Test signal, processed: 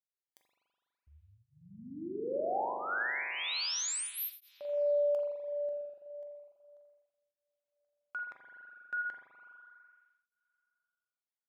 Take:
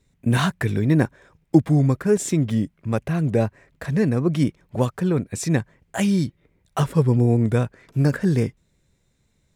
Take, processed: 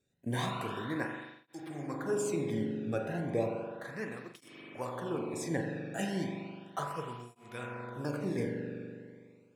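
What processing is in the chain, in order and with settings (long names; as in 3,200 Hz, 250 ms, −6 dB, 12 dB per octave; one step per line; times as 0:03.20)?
tuned comb filter 110 Hz, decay 0.61 s, harmonics odd, mix 70%
spring reverb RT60 2.3 s, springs 41 ms, chirp 45 ms, DRR 0 dB
through-zero flanger with one copy inverted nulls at 0.34 Hz, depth 1 ms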